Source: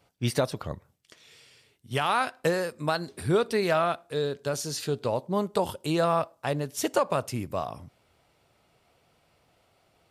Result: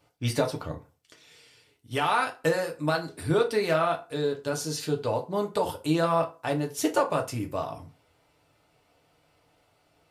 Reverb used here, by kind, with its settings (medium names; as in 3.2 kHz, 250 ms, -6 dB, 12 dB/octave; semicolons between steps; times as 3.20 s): FDN reverb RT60 0.32 s, low-frequency decay 0.8×, high-frequency decay 0.7×, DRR 1.5 dB; trim -2 dB